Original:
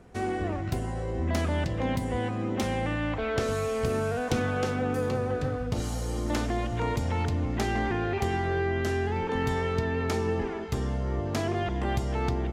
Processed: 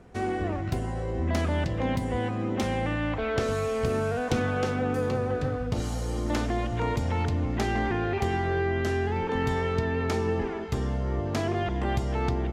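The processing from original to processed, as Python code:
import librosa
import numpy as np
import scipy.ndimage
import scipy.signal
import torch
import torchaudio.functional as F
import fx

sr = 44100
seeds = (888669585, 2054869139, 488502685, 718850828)

y = fx.high_shelf(x, sr, hz=7800.0, db=-6.0)
y = y * librosa.db_to_amplitude(1.0)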